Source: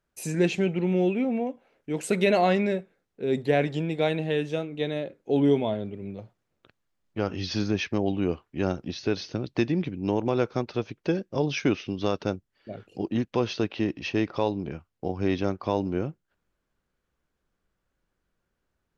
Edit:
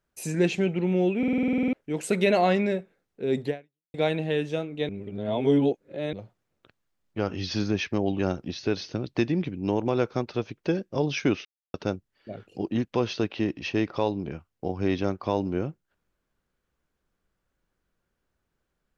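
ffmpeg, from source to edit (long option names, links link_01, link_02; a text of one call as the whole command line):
ffmpeg -i in.wav -filter_complex "[0:a]asplit=18[link_01][link_02][link_03][link_04][link_05][link_06][link_07][link_08][link_09][link_10][link_11][link_12][link_13][link_14][link_15][link_16][link_17][link_18];[link_01]atrim=end=1.232[link_19];[link_02]atrim=start=1.178:end=1.232[link_20];[link_03]atrim=start=1.178:end=1.232[link_21];[link_04]atrim=start=1.178:end=1.232[link_22];[link_05]atrim=start=1.178:end=1.232[link_23];[link_06]atrim=start=1.178:end=1.232[link_24];[link_07]atrim=start=1.178:end=1.232[link_25];[link_08]atrim=start=1.178:end=1.232[link_26];[link_09]atrim=start=1.178:end=1.232[link_27];[link_10]atrim=start=1.178:end=1.232[link_28];[link_11]atrim=start=1.178:end=1.232[link_29];[link_12]atrim=start=1.728:end=3.94,asetpts=PTS-STARTPTS,afade=type=out:start_time=1.752:duration=0.46:curve=exp[link_30];[link_13]atrim=start=3.94:end=4.892,asetpts=PTS-STARTPTS,afade=type=in:duration=0.004:curve=hsin[link_31];[link_14]atrim=start=4.888:end=6.132,asetpts=PTS-STARTPTS,areverse[link_32];[link_15]atrim=start=6.128:end=8.192[link_33];[link_16]atrim=start=8.588:end=11.85,asetpts=PTS-STARTPTS,afade=type=out:start_time=3.258:duration=0.004:curve=hsin[link_34];[link_17]atrim=start=11.85:end=12.14,asetpts=PTS-STARTPTS,volume=0[link_35];[link_18]atrim=start=12.14,asetpts=PTS-STARTPTS,afade=type=in:duration=0.004:curve=hsin[link_36];[link_19][link_20]acrossfade=duration=0.004:curve1=hsin:curve2=hsin[link_37];[link_37][link_21]acrossfade=duration=0.004:curve1=hsin:curve2=hsin[link_38];[link_38][link_22]acrossfade=duration=0.004:curve1=hsin:curve2=hsin[link_39];[link_39][link_23]acrossfade=duration=0.004:curve1=hsin:curve2=hsin[link_40];[link_40][link_24]acrossfade=duration=0.004:curve1=hsin:curve2=hsin[link_41];[link_41][link_25]acrossfade=duration=0.004:curve1=hsin:curve2=hsin[link_42];[link_42][link_26]acrossfade=duration=0.004:curve1=hsin:curve2=hsin[link_43];[link_43][link_27]acrossfade=duration=0.004:curve1=hsin:curve2=hsin[link_44];[link_44][link_28]acrossfade=duration=0.004:curve1=hsin:curve2=hsin[link_45];[link_45][link_29]acrossfade=duration=0.004:curve1=hsin:curve2=hsin[link_46];[link_30][link_31]concat=n=2:v=0:a=1[link_47];[link_46][link_47]acrossfade=duration=0.004:curve1=hsin:curve2=hsin[link_48];[link_48][link_32]acrossfade=duration=0.004:curve1=hsin:curve2=hsin[link_49];[link_49][link_33]acrossfade=duration=0.004:curve1=hsin:curve2=hsin[link_50];[link_34][link_35][link_36]concat=n=3:v=0:a=1[link_51];[link_50][link_51]acrossfade=duration=0.004:curve1=hsin:curve2=hsin" out.wav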